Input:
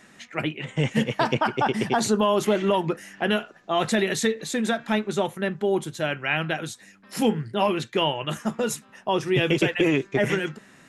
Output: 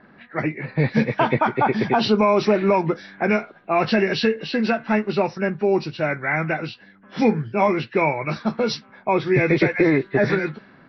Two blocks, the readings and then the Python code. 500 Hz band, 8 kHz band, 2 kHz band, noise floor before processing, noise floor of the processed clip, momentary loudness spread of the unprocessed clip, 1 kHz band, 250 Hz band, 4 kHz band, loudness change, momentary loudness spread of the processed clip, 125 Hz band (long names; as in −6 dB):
+4.0 dB, below −10 dB, +3.5 dB, −54 dBFS, −51 dBFS, 8 LU, +4.0 dB, +4.0 dB, −2.0 dB, +3.5 dB, 8 LU, +4.0 dB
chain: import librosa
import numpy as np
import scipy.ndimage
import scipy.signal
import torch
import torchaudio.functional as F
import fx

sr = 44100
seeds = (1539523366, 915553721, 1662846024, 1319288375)

y = fx.freq_compress(x, sr, knee_hz=1400.0, ratio=1.5)
y = fx.env_lowpass(y, sr, base_hz=1500.0, full_db=-20.0)
y = y * librosa.db_to_amplitude(4.0)